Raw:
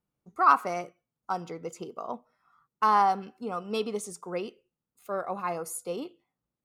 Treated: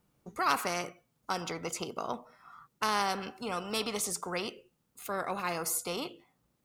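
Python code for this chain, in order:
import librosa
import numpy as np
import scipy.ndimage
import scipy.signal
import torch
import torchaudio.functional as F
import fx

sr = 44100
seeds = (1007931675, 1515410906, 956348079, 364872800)

y = fx.spectral_comp(x, sr, ratio=2.0)
y = y * librosa.db_to_amplitude(-5.0)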